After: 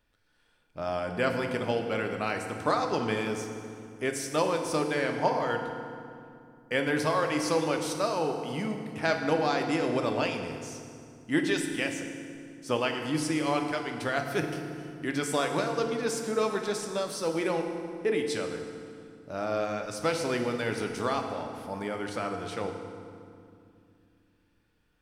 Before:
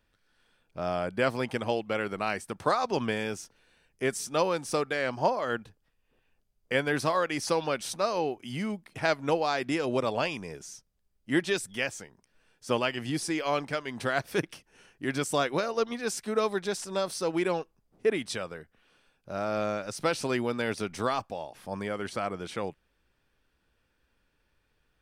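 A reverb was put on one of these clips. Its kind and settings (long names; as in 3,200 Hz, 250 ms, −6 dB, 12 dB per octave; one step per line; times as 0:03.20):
feedback delay network reverb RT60 2.4 s, low-frequency decay 1.55×, high-frequency decay 0.7×, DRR 3.5 dB
level −1.5 dB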